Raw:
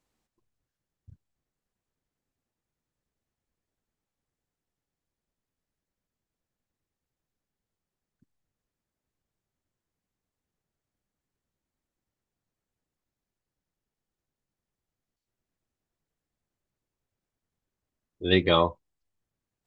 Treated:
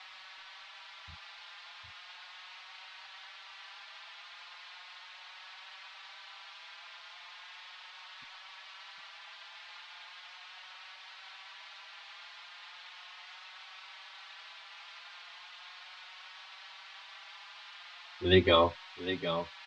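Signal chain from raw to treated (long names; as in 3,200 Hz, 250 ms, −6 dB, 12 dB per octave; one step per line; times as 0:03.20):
noise in a band 770–4,100 Hz −49 dBFS
single-tap delay 757 ms −10 dB
barber-pole flanger 4.9 ms +0.37 Hz
level +1 dB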